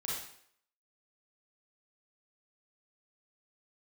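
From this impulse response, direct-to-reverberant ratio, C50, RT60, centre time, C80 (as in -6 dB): -6.0 dB, -1.0 dB, 0.65 s, 62 ms, 4.0 dB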